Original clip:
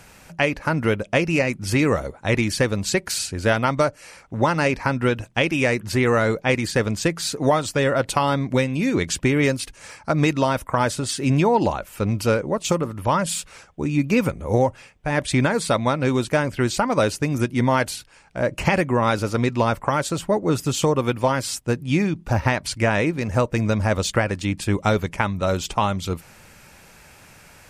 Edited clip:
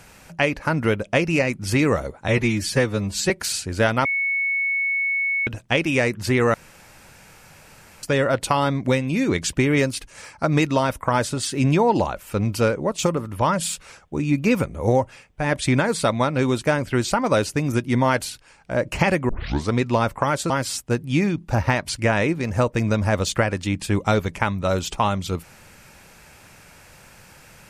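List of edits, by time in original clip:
0:02.28–0:02.96: time-stretch 1.5×
0:03.71–0:05.13: beep over 2,210 Hz −19.5 dBFS
0:06.20–0:07.69: fill with room tone
0:18.95: tape start 0.42 s
0:20.16–0:21.28: remove

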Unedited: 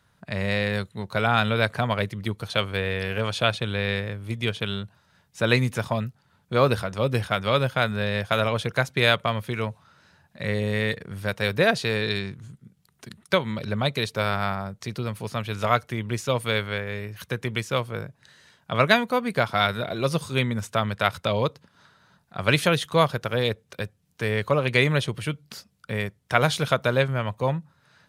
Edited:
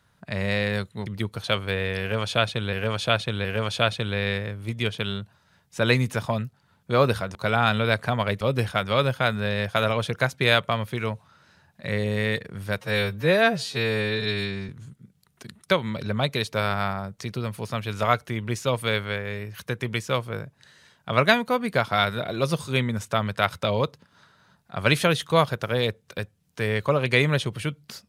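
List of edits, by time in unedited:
0:01.06–0:02.12: move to 0:06.97
0:03.07–0:03.79: repeat, 3 plays
0:11.37–0:12.31: time-stretch 2×

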